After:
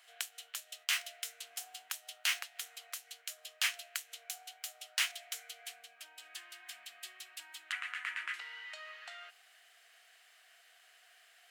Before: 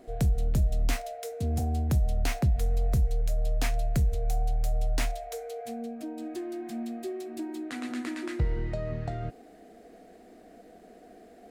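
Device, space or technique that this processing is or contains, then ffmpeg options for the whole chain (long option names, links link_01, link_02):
headphones lying on a table: -filter_complex "[0:a]highpass=frequency=1300:width=0.5412,highpass=frequency=1300:width=1.3066,equalizer=frequency=3000:width_type=o:width=0.33:gain=9,asettb=1/sr,asplit=3[link_01][link_02][link_03];[link_01]atrim=end=7.724[link_04];[link_02]atrim=start=7.72:end=8.34,asetpts=PTS-STARTPTS,afade=type=in:duration=0.004:curve=qsin,afade=type=out:start_time=0.616:duration=0.004:curve=qsin,highshelf=frequency=3000:width_type=q:width=1.5:gain=-10[link_05];[link_03]atrim=start=8.336[link_06];[link_04][link_05]acrossfade=duration=0.004:curve1=hsin:curve2=qsin[link_07];[link_07][link_06]acrossfade=duration=0.004:curve1=qsin:curve2=hsin,volume=2.5dB"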